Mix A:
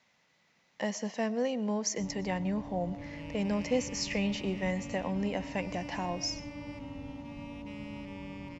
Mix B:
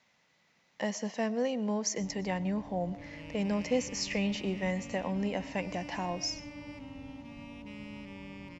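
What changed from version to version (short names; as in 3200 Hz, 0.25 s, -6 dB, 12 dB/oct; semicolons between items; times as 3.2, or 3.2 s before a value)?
first sound -4.5 dB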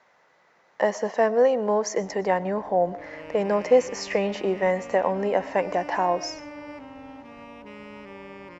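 first sound -6.0 dB; master: add band shelf 780 Hz +13.5 dB 2.7 oct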